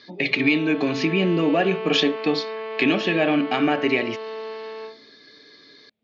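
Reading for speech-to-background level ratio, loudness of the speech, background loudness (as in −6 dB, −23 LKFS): 11.0 dB, −21.5 LKFS, −32.5 LKFS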